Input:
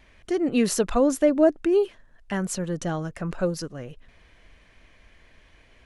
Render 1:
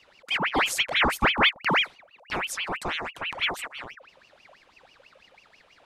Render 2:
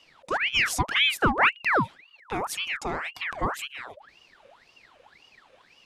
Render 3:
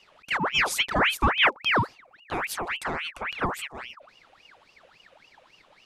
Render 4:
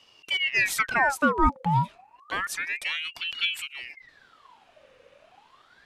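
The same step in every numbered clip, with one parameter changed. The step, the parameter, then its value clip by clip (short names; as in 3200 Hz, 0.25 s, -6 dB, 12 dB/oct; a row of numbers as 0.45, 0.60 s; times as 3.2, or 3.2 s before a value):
ring modulator with a swept carrier, at: 6.1, 1.9, 3.6, 0.3 Hz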